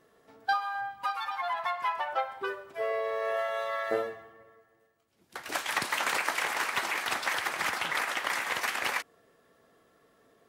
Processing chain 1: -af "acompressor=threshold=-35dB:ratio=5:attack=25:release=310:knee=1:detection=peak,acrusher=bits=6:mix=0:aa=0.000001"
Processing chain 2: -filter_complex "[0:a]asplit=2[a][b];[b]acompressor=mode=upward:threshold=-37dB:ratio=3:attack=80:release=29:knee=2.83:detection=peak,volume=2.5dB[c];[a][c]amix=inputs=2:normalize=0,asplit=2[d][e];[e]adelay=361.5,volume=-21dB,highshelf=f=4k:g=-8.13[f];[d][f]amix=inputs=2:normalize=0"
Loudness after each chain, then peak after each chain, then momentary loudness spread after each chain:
-36.0, -23.5 LUFS; -19.0, -5.5 dBFS; 4, 18 LU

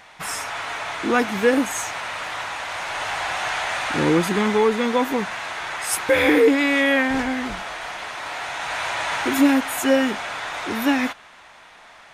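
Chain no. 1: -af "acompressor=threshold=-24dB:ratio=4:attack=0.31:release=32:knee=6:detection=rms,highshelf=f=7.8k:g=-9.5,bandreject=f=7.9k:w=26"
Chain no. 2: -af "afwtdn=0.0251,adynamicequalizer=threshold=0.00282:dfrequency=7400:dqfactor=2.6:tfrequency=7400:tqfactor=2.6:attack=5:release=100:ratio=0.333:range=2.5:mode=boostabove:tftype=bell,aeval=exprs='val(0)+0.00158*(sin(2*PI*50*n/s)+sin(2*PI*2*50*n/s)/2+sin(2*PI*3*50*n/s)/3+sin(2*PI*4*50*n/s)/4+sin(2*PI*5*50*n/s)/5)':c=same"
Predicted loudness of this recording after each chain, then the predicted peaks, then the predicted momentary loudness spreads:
-29.0, -22.0 LUFS; -19.0, -6.5 dBFS; 6, 12 LU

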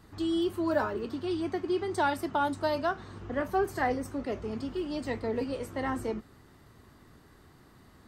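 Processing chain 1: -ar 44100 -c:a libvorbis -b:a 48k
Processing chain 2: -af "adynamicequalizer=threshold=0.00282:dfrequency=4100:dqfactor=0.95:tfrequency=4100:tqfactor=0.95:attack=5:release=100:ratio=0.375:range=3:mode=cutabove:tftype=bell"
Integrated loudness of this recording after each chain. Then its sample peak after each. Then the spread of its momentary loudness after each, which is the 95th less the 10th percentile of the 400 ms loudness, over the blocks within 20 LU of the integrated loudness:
-31.5, -32.0 LUFS; -15.0, -15.0 dBFS; 7, 6 LU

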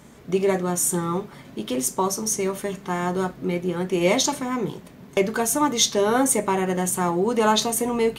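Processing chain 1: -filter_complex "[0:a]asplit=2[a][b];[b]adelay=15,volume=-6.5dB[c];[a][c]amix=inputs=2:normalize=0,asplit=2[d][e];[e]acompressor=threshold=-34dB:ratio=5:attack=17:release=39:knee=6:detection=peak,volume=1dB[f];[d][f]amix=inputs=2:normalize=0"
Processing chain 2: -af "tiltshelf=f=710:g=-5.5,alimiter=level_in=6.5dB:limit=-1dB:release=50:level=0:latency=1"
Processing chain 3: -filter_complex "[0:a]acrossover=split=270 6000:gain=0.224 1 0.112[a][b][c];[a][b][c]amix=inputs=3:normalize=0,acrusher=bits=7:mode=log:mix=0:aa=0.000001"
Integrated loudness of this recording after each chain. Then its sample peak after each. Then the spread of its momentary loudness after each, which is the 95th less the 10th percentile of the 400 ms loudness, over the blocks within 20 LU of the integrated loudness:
-19.5, -15.5, -25.5 LUFS; -3.0, -1.0, -8.0 dBFS; 8, 11, 9 LU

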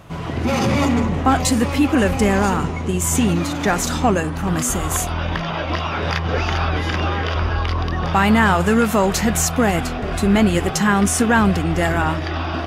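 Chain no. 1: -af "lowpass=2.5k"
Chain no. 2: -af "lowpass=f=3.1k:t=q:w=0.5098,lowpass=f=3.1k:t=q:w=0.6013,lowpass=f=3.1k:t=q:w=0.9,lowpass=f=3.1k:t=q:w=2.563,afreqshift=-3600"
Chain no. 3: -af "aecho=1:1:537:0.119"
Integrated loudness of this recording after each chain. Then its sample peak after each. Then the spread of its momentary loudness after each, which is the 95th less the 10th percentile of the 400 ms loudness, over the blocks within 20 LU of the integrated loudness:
-19.5, -15.5, -18.5 LUFS; -4.5, -1.5, -4.5 dBFS; 8, 7, 7 LU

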